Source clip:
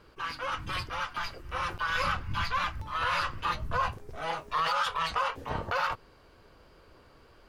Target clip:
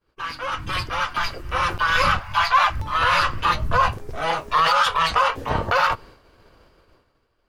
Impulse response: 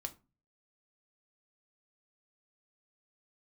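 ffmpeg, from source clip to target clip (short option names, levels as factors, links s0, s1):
-filter_complex "[0:a]dynaudnorm=f=120:g=13:m=1.88,agate=range=0.0224:threshold=0.00562:ratio=3:detection=peak,asettb=1/sr,asplit=3[s0][s1][s2];[s0]atrim=end=2.194[s3];[s1]atrim=start=2.19:end=2.7,asetpts=PTS-STARTPTS,afade=t=in:d=0.004:c=qsin,afade=t=out:st=0.506:d=0.004:c=qsin,lowshelf=f=490:t=q:w=3:g=-12.5[s4];[s2]atrim=start=2.696[s5];[s3][s4]acrossfade=d=0.004:c1=hsin:c2=qsin[s6];[s6][s5]acrossfade=d=0.004:c1=qsin:c2=hsin,asplit=2[s7][s8];[1:a]atrim=start_sample=2205[s9];[s8][s9]afir=irnorm=-1:irlink=0,volume=0.2[s10];[s7][s10]amix=inputs=2:normalize=0,volume=1.58"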